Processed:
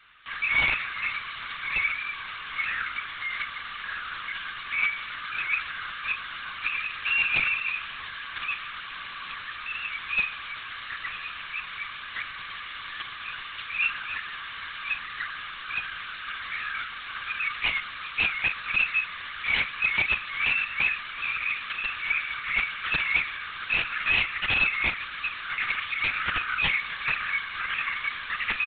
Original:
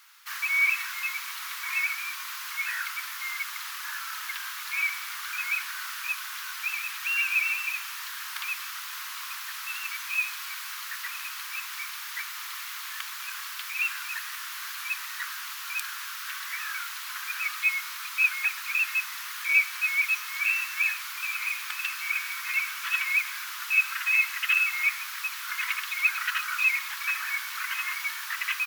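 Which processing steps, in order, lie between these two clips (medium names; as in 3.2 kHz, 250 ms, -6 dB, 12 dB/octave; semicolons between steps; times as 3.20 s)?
integer overflow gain 17.5 dB; doubling 39 ms -11.5 dB; LPC vocoder at 8 kHz whisper; trim +2 dB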